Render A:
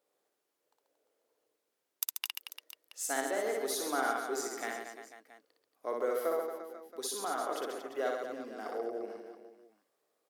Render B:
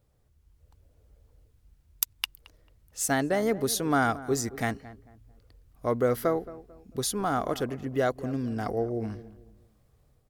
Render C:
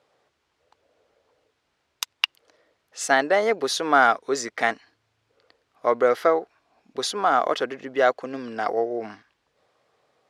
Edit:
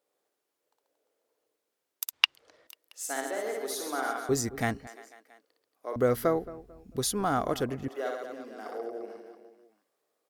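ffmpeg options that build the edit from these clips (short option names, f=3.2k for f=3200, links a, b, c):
-filter_complex "[1:a]asplit=2[a][b];[0:a]asplit=4[c][d][e][f];[c]atrim=end=2.132[g];[2:a]atrim=start=2.128:end=2.672[h];[d]atrim=start=2.668:end=4.292[i];[a]atrim=start=4.288:end=4.872[j];[e]atrim=start=4.868:end=5.962[k];[b]atrim=start=5.958:end=7.882[l];[f]atrim=start=7.878[m];[g][h]acrossfade=d=0.004:c1=hsin:c2=hsin[n];[n][i]acrossfade=d=0.004:c1=hsin:c2=hsin[o];[o][j]acrossfade=d=0.004:c1=hsin:c2=hsin[p];[p][k]acrossfade=d=0.004:c1=hsin:c2=hsin[q];[q][l]acrossfade=d=0.004:c1=hsin:c2=hsin[r];[r][m]acrossfade=d=0.004:c1=hsin:c2=hsin"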